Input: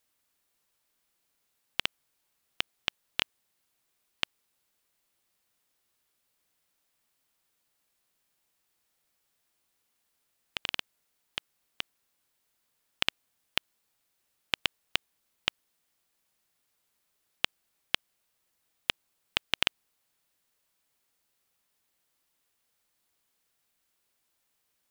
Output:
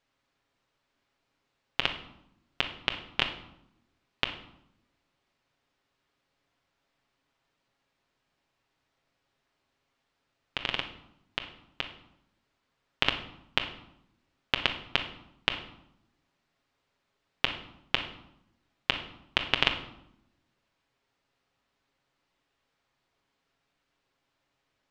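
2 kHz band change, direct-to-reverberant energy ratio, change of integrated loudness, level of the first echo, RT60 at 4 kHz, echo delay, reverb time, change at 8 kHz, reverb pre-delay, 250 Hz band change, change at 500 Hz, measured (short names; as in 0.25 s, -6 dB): +3.5 dB, 3.5 dB, +2.0 dB, none, 0.55 s, none, 0.80 s, -7.5 dB, 7 ms, +7.5 dB, +7.0 dB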